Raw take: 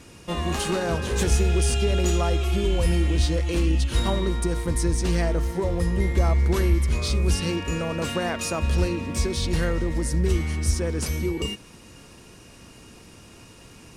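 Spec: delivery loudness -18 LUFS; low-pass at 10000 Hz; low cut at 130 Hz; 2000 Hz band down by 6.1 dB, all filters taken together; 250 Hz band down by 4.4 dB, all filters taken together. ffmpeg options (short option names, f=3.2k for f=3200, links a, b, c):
-af "highpass=130,lowpass=10k,equalizer=f=250:t=o:g=-6.5,equalizer=f=2k:t=o:g=-8,volume=12dB"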